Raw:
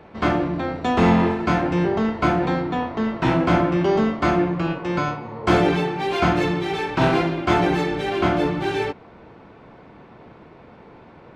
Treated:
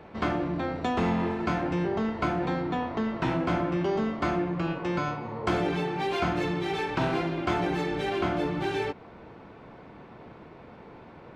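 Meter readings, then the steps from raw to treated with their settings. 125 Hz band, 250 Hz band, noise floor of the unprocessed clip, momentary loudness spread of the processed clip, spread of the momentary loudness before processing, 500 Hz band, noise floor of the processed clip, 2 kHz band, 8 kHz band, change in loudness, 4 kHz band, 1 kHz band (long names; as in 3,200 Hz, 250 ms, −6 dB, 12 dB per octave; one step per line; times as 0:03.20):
−8.0 dB, −8.0 dB, −46 dBFS, 21 LU, 7 LU, −7.5 dB, −48 dBFS, −7.5 dB, can't be measured, −7.5 dB, −7.0 dB, −7.5 dB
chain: downward compressor 2.5 to 1, threshold −25 dBFS, peak gain reduction 9 dB
level −2 dB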